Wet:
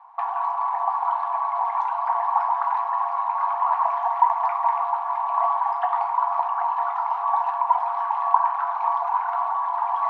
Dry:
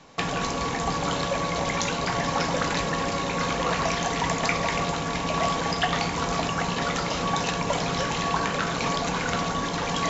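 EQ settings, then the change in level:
linear-phase brick-wall high-pass 660 Hz
low-pass with resonance 970 Hz, resonance Q 8.2
−4.0 dB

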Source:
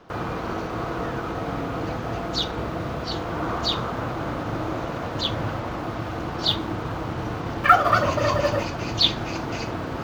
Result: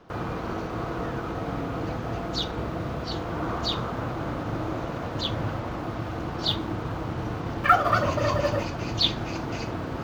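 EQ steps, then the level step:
low-shelf EQ 390 Hz +3.5 dB
−4.0 dB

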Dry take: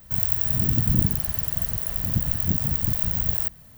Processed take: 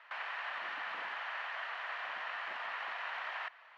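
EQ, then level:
high-pass filter 890 Hz 24 dB per octave
low-pass filter 2,600 Hz 24 dB per octave
+8.0 dB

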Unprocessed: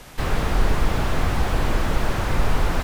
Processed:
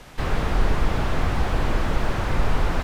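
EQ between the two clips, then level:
high-shelf EQ 7,600 Hz −9.5 dB
−1.0 dB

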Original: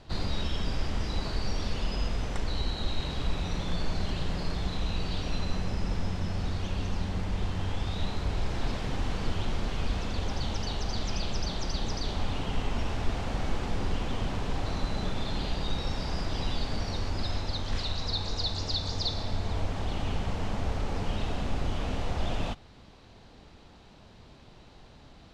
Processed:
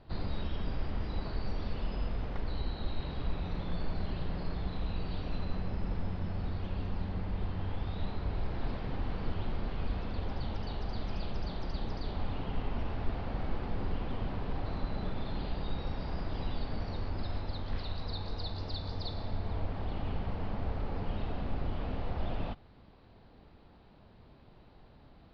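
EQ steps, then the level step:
Chebyshev low-pass filter 4,700 Hz, order 4
high-shelf EQ 2,100 Hz −10.5 dB
−3.0 dB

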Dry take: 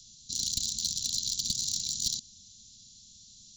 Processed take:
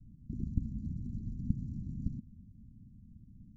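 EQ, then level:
inverse Chebyshev low-pass filter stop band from 1,200 Hz, stop band 60 dB
+12.5 dB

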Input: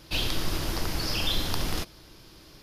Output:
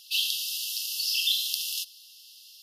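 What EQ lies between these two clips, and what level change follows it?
linear-phase brick-wall high-pass 2,600 Hz
high-shelf EQ 12,000 Hz +8 dB
+4.0 dB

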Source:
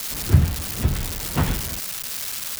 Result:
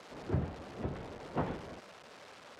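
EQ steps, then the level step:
resonant band-pass 530 Hz, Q 1.1
high-frequency loss of the air 57 metres
−4.0 dB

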